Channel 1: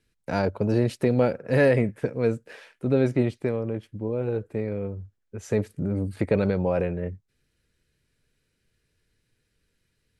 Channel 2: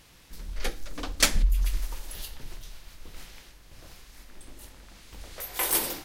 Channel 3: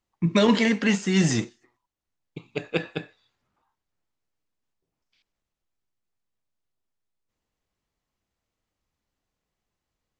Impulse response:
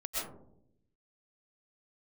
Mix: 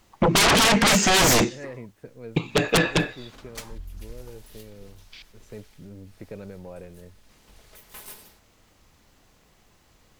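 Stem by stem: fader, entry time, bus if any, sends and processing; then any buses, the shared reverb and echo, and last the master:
-16.5 dB, 0.00 s, no send, dry
-12.5 dB, 2.35 s, no send, minimum comb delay 4.7 ms; vocal rider within 4 dB 0.5 s
+2.0 dB, 0.00 s, no send, sine folder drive 18 dB, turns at -8 dBFS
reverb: off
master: compressor 1.5:1, threshold -31 dBFS, peak gain reduction 8 dB

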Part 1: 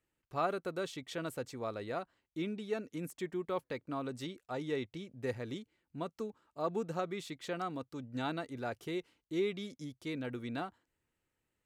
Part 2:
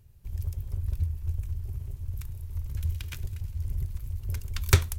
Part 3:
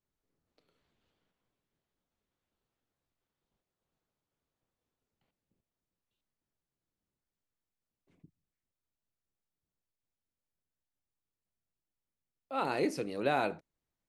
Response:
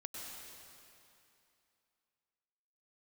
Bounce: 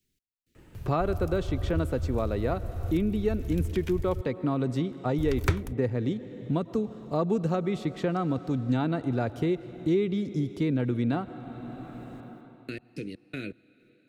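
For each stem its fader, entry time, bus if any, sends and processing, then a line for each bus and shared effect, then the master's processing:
+2.0 dB, 0.55 s, send -11 dB, low shelf 490 Hz +11.5 dB
0.0 dB, 0.75 s, muted 4.21–5.18, no send, dry
-9.5 dB, 0.00 s, send -22 dB, Chebyshev band-stop 330–2300 Hz, order 2; high shelf 4500 Hz +10 dB; step gate "xx...x..xx.." 162 bpm -60 dB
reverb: on, RT60 2.7 s, pre-delay 92 ms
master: high shelf 6000 Hz -8 dB; three-band squash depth 70%

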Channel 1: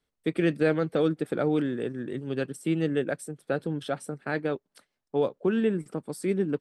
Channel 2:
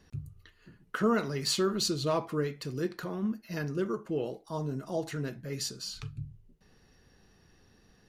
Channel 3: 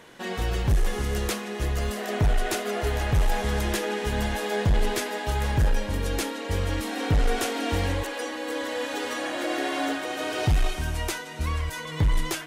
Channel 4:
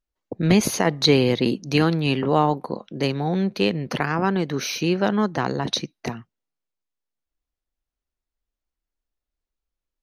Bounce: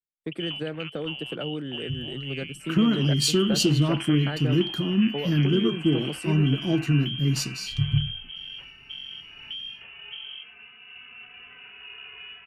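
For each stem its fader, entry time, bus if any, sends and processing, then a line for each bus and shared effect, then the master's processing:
+1.0 dB, 0.00 s, bus A, no send, compressor 6:1, threshold -28 dBFS, peak gain reduction 9.5 dB
-8.5 dB, 1.75 s, bus A, no send, resonant low shelf 390 Hz +7.5 dB, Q 3; AGC gain up to 11.5 dB
-7.5 dB, 2.40 s, bus B, no send, dry
-9.0 dB, 0.00 s, bus B, no send, dry
bus A: 0.0 dB, bell 140 Hz +7 dB 0.47 oct; compressor, threshold -19 dBFS, peak gain reduction 6 dB
bus B: 0.0 dB, inverted band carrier 3200 Hz; compressor 10:1, threshold -32 dBFS, peak gain reduction 12 dB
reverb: off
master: three-band expander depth 70%

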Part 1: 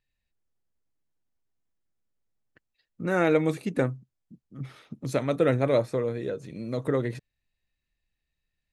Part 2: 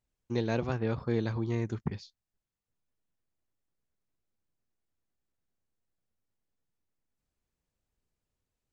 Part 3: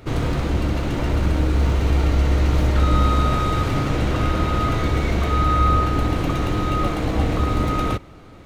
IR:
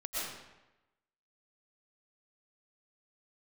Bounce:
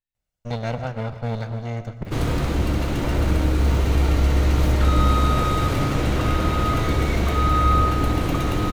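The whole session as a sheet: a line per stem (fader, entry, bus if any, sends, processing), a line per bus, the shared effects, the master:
-14.5 dB, 0.00 s, no send, dry
+1.5 dB, 0.15 s, send -13.5 dB, minimum comb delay 1.4 ms
-0.5 dB, 2.05 s, no send, high shelf 9000 Hz +9 dB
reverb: on, RT60 1.0 s, pre-delay 80 ms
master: dry

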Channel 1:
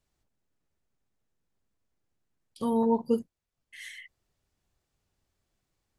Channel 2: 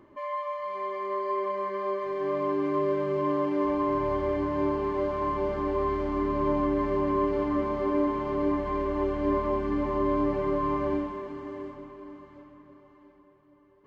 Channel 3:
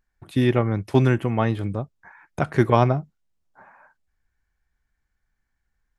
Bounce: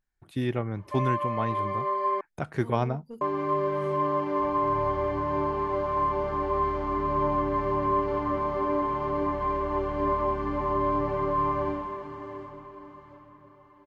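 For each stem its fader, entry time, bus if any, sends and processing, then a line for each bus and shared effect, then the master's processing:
-15.5 dB, 0.00 s, no send, soft clip -17 dBFS, distortion -21 dB
-1.0 dB, 0.75 s, muted 2.21–3.21, no send, graphic EQ 125/250/1000 Hz +7/-6/+6 dB
-9.0 dB, 0.00 s, no send, dry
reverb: off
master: dry

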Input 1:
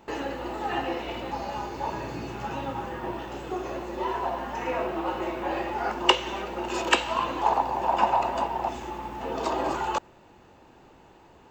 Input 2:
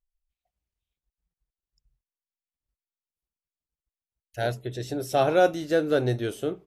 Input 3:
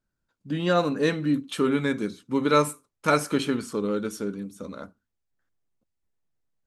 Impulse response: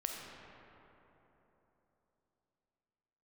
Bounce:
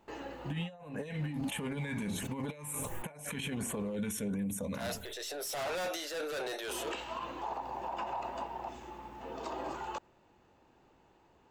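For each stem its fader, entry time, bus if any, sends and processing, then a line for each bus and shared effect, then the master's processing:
-15.5 dB, 0.00 s, muted 3.96–6.68, no send, dry
+0.5 dB, 0.40 s, no send, Bessel high-pass 750 Hz, order 6; soft clip -38 dBFS, distortion -1 dB; transient shaper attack -6 dB, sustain +7 dB
+2.0 dB, 0.00 s, no send, LFO notch sine 1.4 Hz 540–5500 Hz; fixed phaser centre 1300 Hz, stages 6; sustainer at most 44 dB/s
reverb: off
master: negative-ratio compressor -33 dBFS, ratio -0.5; limiter -28.5 dBFS, peak gain reduction 9.5 dB

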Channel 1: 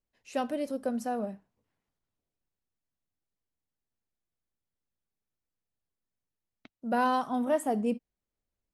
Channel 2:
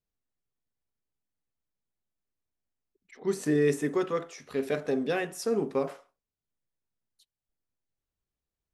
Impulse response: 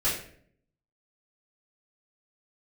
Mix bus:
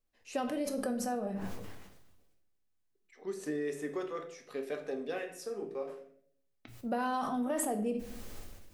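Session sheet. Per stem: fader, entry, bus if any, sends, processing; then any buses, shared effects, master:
-1.0 dB, 0.00 s, send -14 dB, notches 60/120 Hz; sustainer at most 44 dB/s
-6.0 dB, 0.00 s, send -15.5 dB, HPF 250 Hz 6 dB/oct; bell 550 Hz +3 dB; noise-modulated level, depth 60%; auto duck -15 dB, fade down 1.70 s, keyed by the first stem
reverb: on, RT60 0.60 s, pre-delay 3 ms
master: compressor 3:1, threshold -32 dBFS, peak gain reduction 8 dB

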